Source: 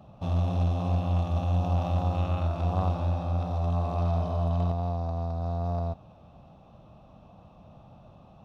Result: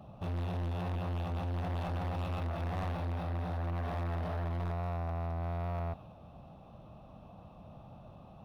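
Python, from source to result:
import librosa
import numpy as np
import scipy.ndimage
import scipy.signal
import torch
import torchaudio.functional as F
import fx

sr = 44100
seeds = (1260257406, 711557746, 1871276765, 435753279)

y = fx.dynamic_eq(x, sr, hz=2200.0, q=0.73, threshold_db=-53.0, ratio=4.0, max_db=5)
y = 10.0 ** (-33.0 / 20.0) * np.tanh(y / 10.0 ** (-33.0 / 20.0))
y = np.interp(np.arange(len(y)), np.arange(len(y))[::3], y[::3])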